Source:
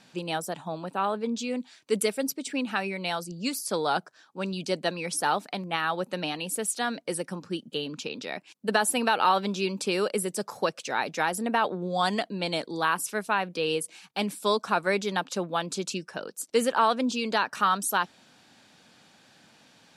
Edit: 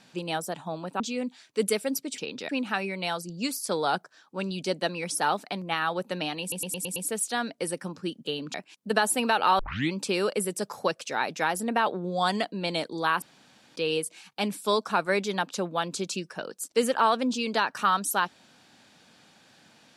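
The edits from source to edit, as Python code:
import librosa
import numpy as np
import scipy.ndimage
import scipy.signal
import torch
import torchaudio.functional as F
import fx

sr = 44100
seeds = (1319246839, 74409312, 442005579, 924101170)

y = fx.edit(x, sr, fx.cut(start_s=1.0, length_s=0.33),
    fx.stutter(start_s=6.43, slice_s=0.11, count=6),
    fx.move(start_s=8.01, length_s=0.31, to_s=2.51),
    fx.tape_start(start_s=9.37, length_s=0.33),
    fx.room_tone_fill(start_s=13.0, length_s=0.54), tone=tone)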